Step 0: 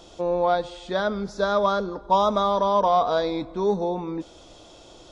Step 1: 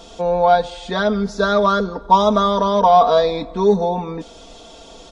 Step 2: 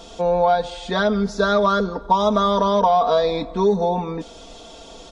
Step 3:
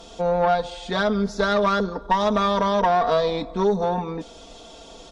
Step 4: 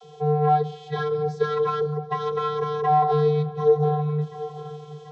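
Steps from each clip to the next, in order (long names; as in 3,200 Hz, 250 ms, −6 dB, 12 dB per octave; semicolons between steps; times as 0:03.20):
comb filter 4.4 ms, depth 70%; level +5.5 dB
downward compressor, threshold −13 dBFS, peak gain reduction 7 dB
tube saturation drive 11 dB, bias 0.55
delay with a low-pass on its return 736 ms, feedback 60%, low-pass 3,300 Hz, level −16 dB; channel vocoder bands 32, square 150 Hz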